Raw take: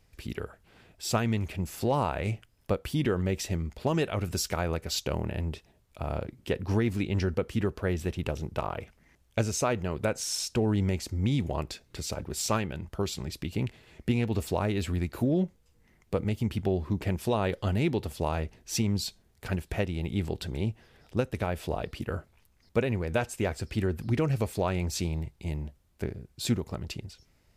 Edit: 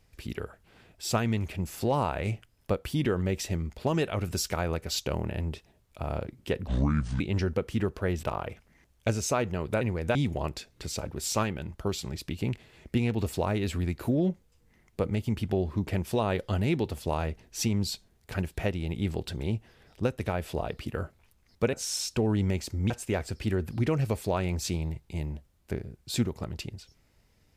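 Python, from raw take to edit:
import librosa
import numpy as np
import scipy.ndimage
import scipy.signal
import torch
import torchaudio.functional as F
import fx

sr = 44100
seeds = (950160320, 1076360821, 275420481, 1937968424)

y = fx.edit(x, sr, fx.speed_span(start_s=6.67, length_s=0.34, speed=0.64),
    fx.cut(start_s=8.04, length_s=0.5),
    fx.swap(start_s=10.12, length_s=1.17, other_s=22.87, other_length_s=0.34), tone=tone)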